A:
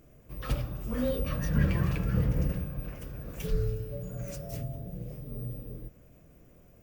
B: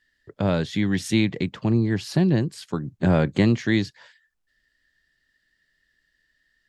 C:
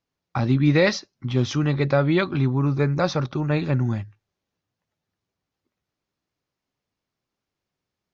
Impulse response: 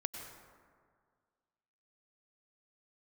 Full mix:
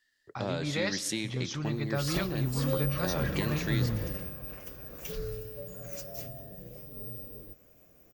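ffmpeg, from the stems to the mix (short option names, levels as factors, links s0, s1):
-filter_complex "[0:a]equalizer=f=9300:w=2.3:g=-13.5,adelay=1650,volume=0.891[s0];[1:a]acompressor=threshold=0.1:ratio=6,volume=0.355,asplit=2[s1][s2];[s2]volume=0.447[s3];[2:a]asubboost=boost=10.5:cutoff=150,volume=0.224,asplit=2[s4][s5];[s5]volume=0.188[s6];[3:a]atrim=start_sample=2205[s7];[s3][s6]amix=inputs=2:normalize=0[s8];[s8][s7]afir=irnorm=-1:irlink=0[s9];[s0][s1][s4][s9]amix=inputs=4:normalize=0,bass=f=250:g=-10,treble=f=4000:g=8"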